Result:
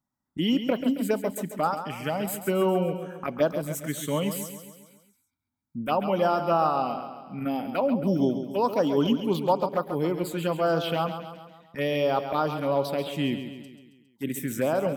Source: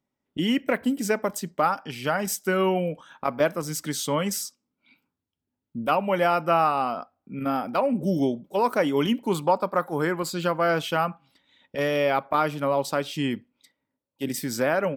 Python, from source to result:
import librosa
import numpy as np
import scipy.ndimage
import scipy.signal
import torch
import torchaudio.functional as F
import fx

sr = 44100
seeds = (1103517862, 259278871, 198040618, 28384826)

p1 = fx.env_phaser(x, sr, low_hz=460.0, high_hz=2200.0, full_db=-18.0)
y = p1 + fx.echo_feedback(p1, sr, ms=136, feedback_pct=53, wet_db=-9.5, dry=0)